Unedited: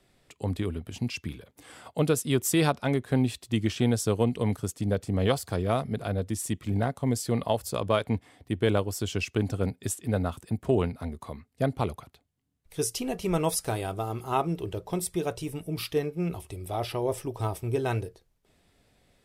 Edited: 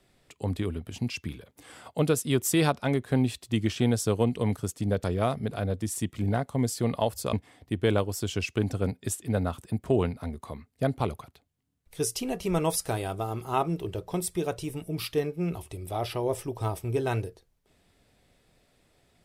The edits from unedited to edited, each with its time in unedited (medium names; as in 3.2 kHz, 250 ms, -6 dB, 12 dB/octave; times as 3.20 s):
5.04–5.52 s: delete
7.81–8.12 s: delete